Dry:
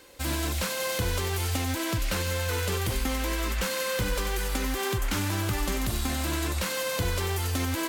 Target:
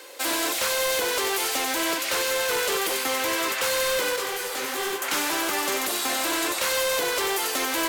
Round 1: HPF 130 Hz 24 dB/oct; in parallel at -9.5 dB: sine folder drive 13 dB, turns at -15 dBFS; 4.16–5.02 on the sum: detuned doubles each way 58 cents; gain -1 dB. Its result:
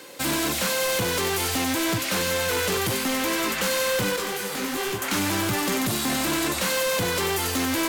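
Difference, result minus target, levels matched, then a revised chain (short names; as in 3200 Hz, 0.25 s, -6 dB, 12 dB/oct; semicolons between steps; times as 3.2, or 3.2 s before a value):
125 Hz band +19.5 dB
HPF 370 Hz 24 dB/oct; in parallel at -9.5 dB: sine folder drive 13 dB, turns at -15 dBFS; 4.16–5.02 on the sum: detuned doubles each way 58 cents; gain -1 dB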